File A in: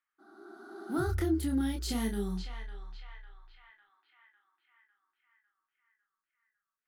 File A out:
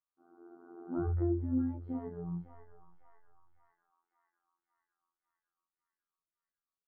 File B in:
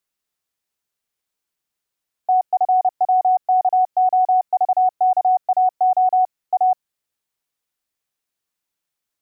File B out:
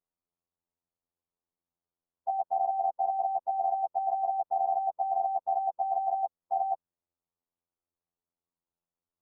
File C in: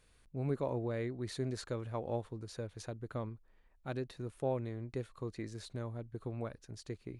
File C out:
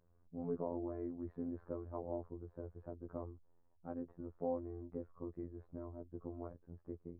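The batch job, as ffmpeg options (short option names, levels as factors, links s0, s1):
-af "lowpass=f=1100:w=0.5412,lowpass=f=1100:w=1.3066,afftfilt=real='hypot(re,im)*cos(PI*b)':imag='0':win_size=2048:overlap=0.75,lowshelf=f=420:g=3.5,volume=0.794"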